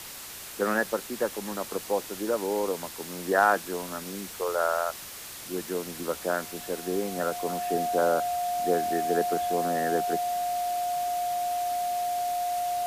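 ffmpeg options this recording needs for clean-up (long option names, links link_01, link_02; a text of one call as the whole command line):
ffmpeg -i in.wav -af "adeclick=threshold=4,bandreject=frequency=710:width=30,afwtdn=0.01" out.wav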